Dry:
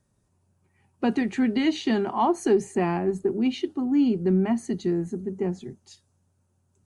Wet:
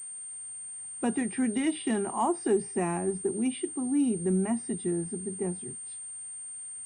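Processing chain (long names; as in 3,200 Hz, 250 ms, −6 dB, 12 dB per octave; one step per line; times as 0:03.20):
hearing-aid frequency compression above 2,900 Hz 1.5 to 1
bit-depth reduction 10 bits, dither triangular
switching amplifier with a slow clock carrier 8,700 Hz
level −5 dB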